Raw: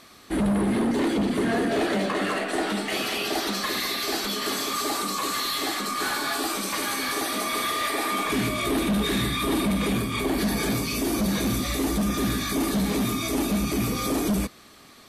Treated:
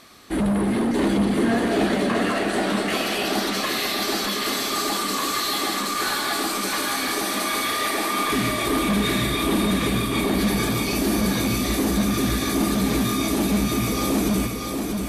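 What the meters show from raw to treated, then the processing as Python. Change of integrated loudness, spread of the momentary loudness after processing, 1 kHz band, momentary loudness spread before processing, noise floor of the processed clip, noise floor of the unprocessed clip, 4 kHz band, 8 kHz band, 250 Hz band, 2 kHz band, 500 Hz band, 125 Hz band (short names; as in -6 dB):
+3.0 dB, 2 LU, +3.0 dB, 3 LU, -27 dBFS, -50 dBFS, +3.0 dB, +3.0 dB, +3.5 dB, +3.0 dB, +3.0 dB, +3.0 dB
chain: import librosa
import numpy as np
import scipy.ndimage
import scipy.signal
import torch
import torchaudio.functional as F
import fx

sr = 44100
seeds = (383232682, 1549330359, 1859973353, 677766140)

y = fx.echo_feedback(x, sr, ms=635, feedback_pct=44, wet_db=-4.5)
y = y * 10.0 ** (1.5 / 20.0)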